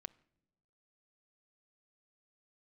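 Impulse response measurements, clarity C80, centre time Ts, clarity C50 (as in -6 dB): 25.0 dB, 1 ms, 22.5 dB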